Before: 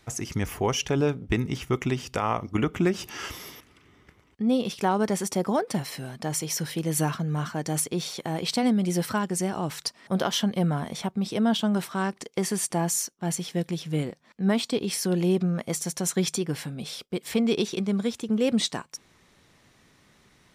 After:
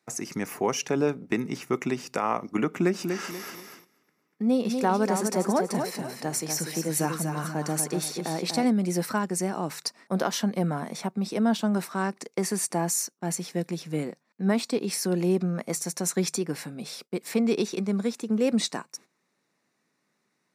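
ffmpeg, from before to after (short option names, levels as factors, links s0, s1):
-filter_complex "[0:a]asettb=1/sr,asplit=3[s0][s1][s2];[s0]atrim=end=2.794[s3];[s1]atrim=start=2.79:end=8.65,asetpts=PTS-STARTPTS,afade=t=in:d=0.004:c=qsin,afade=t=out:st=5.856:d=0.004:c=qsin,aecho=1:1:242|484|726|968:0.501|0.17|0.0579|0.0197,atrim=end_sample=258426[s4];[s2]atrim=start=8.646[s5];[s3][s4]acrossfade=d=0.004:c1=hsin:c2=qsin[s6];[s6][s5]acrossfade=d=0.004:c1=qsin:c2=hsin,agate=range=0.2:threshold=0.00501:ratio=16:detection=peak,highpass=f=170:w=0.5412,highpass=f=170:w=1.3066,equalizer=f=3200:t=o:w=0.26:g=-12.5"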